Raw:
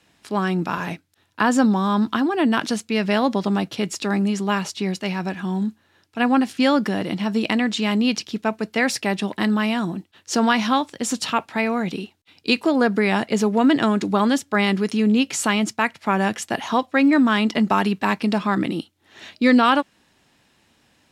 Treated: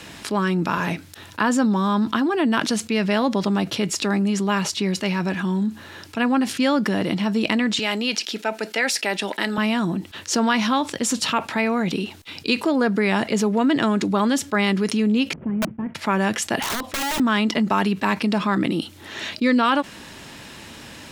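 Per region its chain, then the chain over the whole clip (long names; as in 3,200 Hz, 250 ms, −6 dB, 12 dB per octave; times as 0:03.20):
0:07.79–0:09.58: Bessel high-pass filter 530 Hz + notch filter 1,100 Hz, Q 5.2
0:15.33–0:15.95: variable-slope delta modulation 16 kbit/s + resonant band-pass 170 Hz, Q 1.7 + wrap-around overflow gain 20 dB
0:16.62–0:17.20: downward compressor 16 to 1, threshold −23 dBFS + tube saturation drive 15 dB, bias 0.2 + wrap-around overflow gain 25 dB
whole clip: notch filter 750 Hz, Q 12; envelope flattener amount 50%; level −4 dB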